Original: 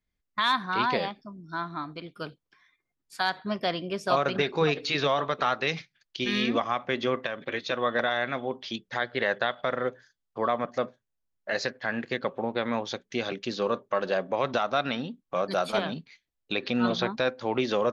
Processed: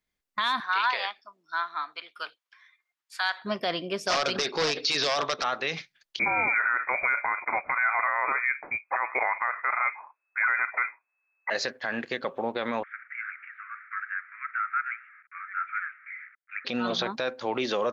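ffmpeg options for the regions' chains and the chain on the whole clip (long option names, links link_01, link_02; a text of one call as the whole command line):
ffmpeg -i in.wav -filter_complex "[0:a]asettb=1/sr,asplit=3[link_01][link_02][link_03];[link_01]atrim=end=0.604[link_04];[link_02]atrim=start=0.6:end=3.42,asetpts=PTS-STARTPTS,afade=type=in:duration=0.004:curve=qsin,afade=type=out:start_time=2.816:duration=0.004:curve=qsin,highpass=1300,highshelf=frequency=4600:gain=-11,acontrast=30[link_05];[link_03]atrim=start=3.416[link_06];[link_04][link_05]acrossfade=duration=0.004:curve1=hsin:curve2=qsin[link_07];[link_07][link_06]acrossfade=duration=0.004:curve1=qsin:curve2=hsin,asettb=1/sr,asplit=3[link_08][link_09][link_10];[link_08]atrim=end=4.064[link_11];[link_09]atrim=start=4.06:end=5.44,asetpts=PTS-STARTPTS,afade=type=in:duration=0.004:curve=qsin,afade=type=out:start_time=1.376:duration=0.004:curve=qsin,aeval=exprs='0.1*(abs(mod(val(0)/0.1+3,4)-2)-1)':channel_layout=same,lowpass=frequency=5300:width_type=q:width=4.5[link_12];[link_10]atrim=start=5.436[link_13];[link_11][link_12]acrossfade=duration=0.004:curve1=hsin:curve2=qsin[link_14];[link_14][link_13]acrossfade=duration=0.004:curve1=qsin:curve2=hsin,asettb=1/sr,asplit=3[link_15][link_16][link_17];[link_15]atrim=end=6.194[link_18];[link_16]atrim=start=6.19:end=11.5,asetpts=PTS-STARTPTS,afade=type=in:duration=0.004:curve=qsin,afade=type=out:start_time=5.306:duration=0.004:curve=qsin,equalizer=frequency=1300:width=0.74:gain=13,lowpass=frequency=2200:width_type=q:width=0.5098,lowpass=frequency=2200:width_type=q:width=0.6013,lowpass=frequency=2200:width_type=q:width=0.9,lowpass=frequency=2200:width_type=q:width=2.563,afreqshift=-2600[link_19];[link_17]atrim=start=11.496[link_20];[link_18][link_19]acrossfade=duration=0.004:curve1=hsin:curve2=qsin[link_21];[link_21][link_20]acrossfade=duration=0.004:curve1=qsin:curve2=hsin,asettb=1/sr,asplit=3[link_22][link_23][link_24];[link_22]atrim=end=12.834[link_25];[link_23]atrim=start=12.83:end=16.65,asetpts=PTS-STARTPTS,afade=type=in:duration=0.004:curve=qsin,afade=type=out:start_time=3.816:duration=0.004:curve=qsin,aeval=exprs='val(0)+0.5*0.0178*sgn(val(0))':channel_layout=same,asuperpass=centerf=1700:order=12:qfactor=1.7[link_26];[link_24]atrim=start=16.646[link_27];[link_25][link_26]acrossfade=duration=0.004:curve1=hsin:curve2=qsin[link_28];[link_28][link_27]acrossfade=duration=0.004:curve1=qsin:curve2=hsin,alimiter=limit=-19.5dB:level=0:latency=1:release=37,lowshelf=frequency=210:gain=-12,volume=3.5dB" out.wav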